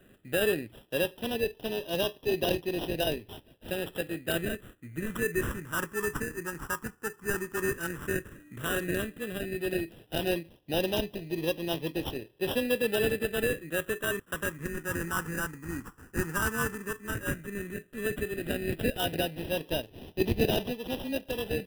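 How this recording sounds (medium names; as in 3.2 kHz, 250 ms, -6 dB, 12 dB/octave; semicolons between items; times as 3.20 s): aliases and images of a low sample rate 2.2 kHz, jitter 0%; phasing stages 4, 0.11 Hz, lowest notch 630–1300 Hz; AAC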